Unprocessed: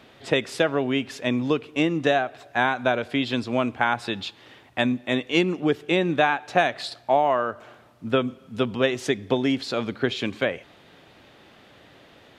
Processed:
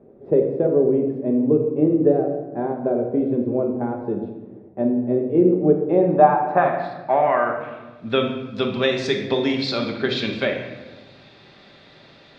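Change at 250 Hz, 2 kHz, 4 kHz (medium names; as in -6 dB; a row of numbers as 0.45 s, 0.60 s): +4.5 dB, -4.0 dB, -0.5 dB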